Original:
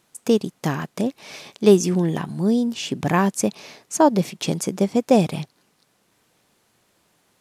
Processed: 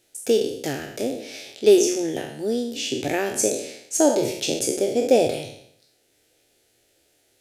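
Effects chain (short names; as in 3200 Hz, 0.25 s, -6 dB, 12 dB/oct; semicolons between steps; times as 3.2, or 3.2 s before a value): spectral trails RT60 0.70 s; fixed phaser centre 440 Hz, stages 4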